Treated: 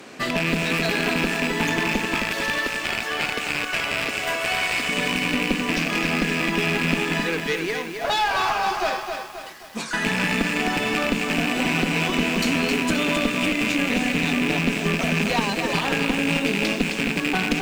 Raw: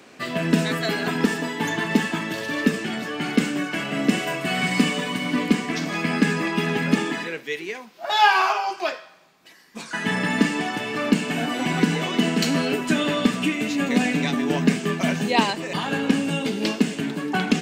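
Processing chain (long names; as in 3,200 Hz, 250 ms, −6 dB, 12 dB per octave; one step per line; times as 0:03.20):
loose part that buzzes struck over −31 dBFS, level −11 dBFS
downward compressor, threshold −24 dBFS, peak gain reduction 12 dB
0:02.14–0:04.89: high-pass filter 580 Hz 12 dB per octave
asymmetric clip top −29 dBFS
feedback echo at a low word length 264 ms, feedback 55%, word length 8 bits, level −5.5 dB
level +6 dB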